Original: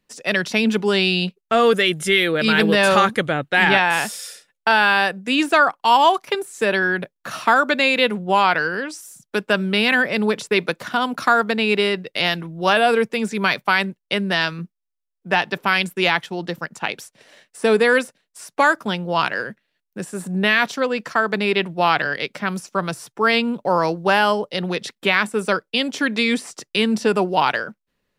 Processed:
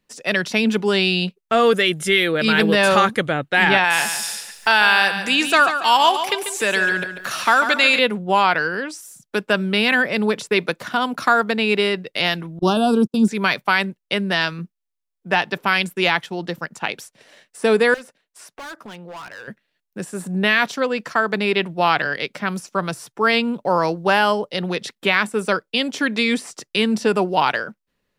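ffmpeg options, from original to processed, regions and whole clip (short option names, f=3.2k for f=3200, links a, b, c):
-filter_complex "[0:a]asettb=1/sr,asplit=3[a][b][c];[a]atrim=end=3.844[d];[b]atrim=start=3.84:end=7.99,asetpts=PTS-STARTPTS,afade=t=in:d=0.004:c=qsin,afade=t=out:st=4.146:d=0.004:c=qsin,tiltshelf=f=1.2k:g=-5,acompressor=mode=upward:threshold=-20dB:ratio=2.5:attack=3.2:release=140:knee=2.83:detection=peak,aecho=1:1:142|284|426|568:0.355|0.128|0.046|0.0166,atrim=end_sample=183015[e];[c]atrim=start=7.986[f];[d][e]acrossfade=d=0.004:c1=hsin:c2=qsin[g];[g][f]acrossfade=d=0.004:c1=qsin:c2=hsin,asettb=1/sr,asplit=3[h][i][j];[h]atrim=end=12.594[k];[i]atrim=start=12.59:end=13.28,asetpts=PTS-STARTPTS,afade=t=in:d=0.004:c=qsin,afade=t=out:st=0.686:d=0.004:c=qsin,agate=range=-39dB:threshold=-27dB:ratio=16:release=100:detection=peak,asuperstop=centerf=2000:order=4:qfactor=0.92,lowshelf=f=400:t=q:w=3:g=6.5[l];[j]atrim=start=13.276[m];[k][l]acrossfade=d=0.004:c1=hsin:c2=qsin[n];[n][m]acrossfade=d=0.004:c1=qsin:c2=hsin,asettb=1/sr,asplit=3[o][p][q];[o]atrim=end=17.944[r];[p]atrim=start=17.94:end=19.48,asetpts=PTS-STARTPTS,afade=t=in:d=0.004:c=qsin,afade=t=out:st=1.536:d=0.004:c=qsin,bass=f=250:g=-6,treble=f=4k:g=-5,volume=23dB,asoftclip=hard,volume=-23dB,acompressor=threshold=-37dB:ratio=3:attack=3.2:release=140:knee=1:detection=peak[s];[q]atrim=start=19.476[t];[r][s]acrossfade=d=0.004:c1=hsin:c2=qsin[u];[u][t]acrossfade=d=0.004:c1=qsin:c2=hsin"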